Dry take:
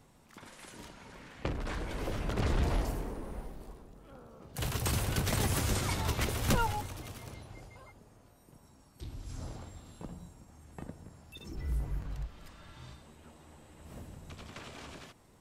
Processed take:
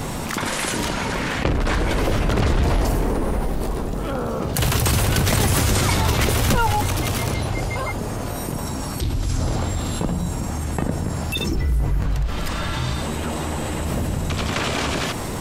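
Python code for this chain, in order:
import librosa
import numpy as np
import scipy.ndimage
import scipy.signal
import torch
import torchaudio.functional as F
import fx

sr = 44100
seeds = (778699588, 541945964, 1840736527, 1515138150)

y = fx.env_flatten(x, sr, amount_pct=70)
y = y * 10.0 ** (8.0 / 20.0)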